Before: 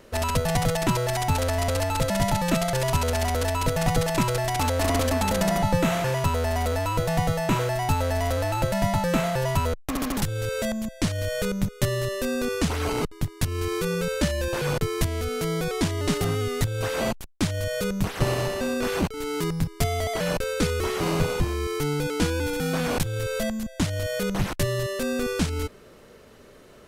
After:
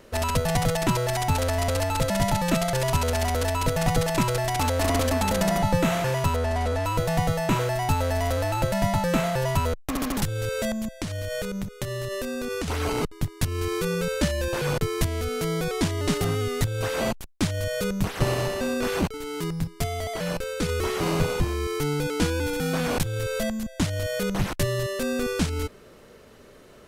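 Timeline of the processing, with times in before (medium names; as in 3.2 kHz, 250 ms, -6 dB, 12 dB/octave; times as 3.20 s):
6.36–6.85 s: one-bit delta coder 64 kbps, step -43 dBFS
11.00–12.68 s: compression 4:1, threshold -27 dBFS
19.17–20.69 s: feedback comb 170 Hz, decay 0.19 s, mix 40%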